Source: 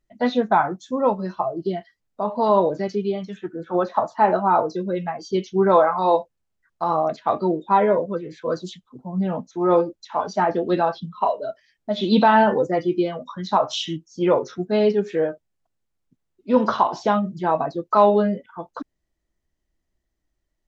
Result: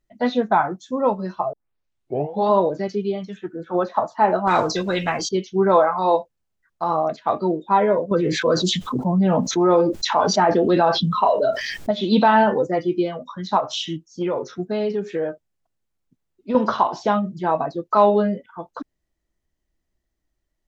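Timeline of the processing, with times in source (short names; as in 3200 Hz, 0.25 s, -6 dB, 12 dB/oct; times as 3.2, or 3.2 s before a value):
1.53 tape start 0.98 s
4.47–5.29 spectral compressor 2:1
8.11–11.91 fast leveller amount 70%
13.59–16.55 compressor, threshold -19 dBFS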